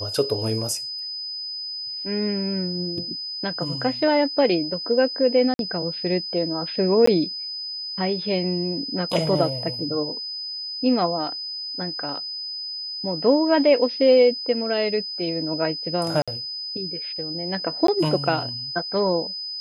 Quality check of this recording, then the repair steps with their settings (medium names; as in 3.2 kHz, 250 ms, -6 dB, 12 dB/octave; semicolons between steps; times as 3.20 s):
whine 5 kHz -29 dBFS
5.54–5.59 s: dropout 52 ms
7.06–7.07 s: dropout 14 ms
16.22–16.28 s: dropout 56 ms
17.87–17.88 s: dropout 13 ms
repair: band-stop 5 kHz, Q 30; interpolate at 5.54 s, 52 ms; interpolate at 7.06 s, 14 ms; interpolate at 16.22 s, 56 ms; interpolate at 17.87 s, 13 ms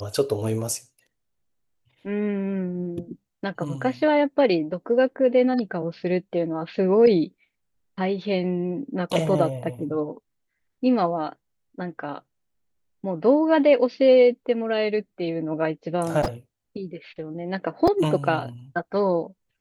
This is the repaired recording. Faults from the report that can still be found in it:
nothing left